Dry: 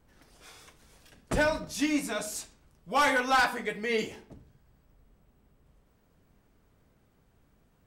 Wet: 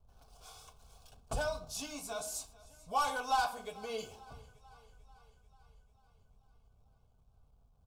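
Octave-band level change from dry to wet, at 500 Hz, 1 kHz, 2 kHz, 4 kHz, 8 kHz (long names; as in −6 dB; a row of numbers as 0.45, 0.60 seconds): −9.0, −5.0, −13.0, −7.5, −4.0 decibels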